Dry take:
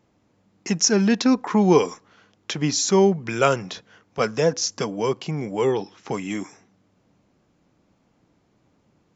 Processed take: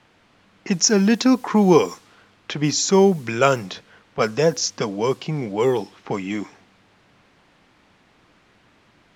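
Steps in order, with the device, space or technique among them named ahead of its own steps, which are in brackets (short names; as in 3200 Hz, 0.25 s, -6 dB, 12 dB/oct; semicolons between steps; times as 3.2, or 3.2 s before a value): cassette deck with a dynamic noise filter (white noise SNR 28 dB; low-pass opened by the level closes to 2300 Hz, open at -16 dBFS); gain +2 dB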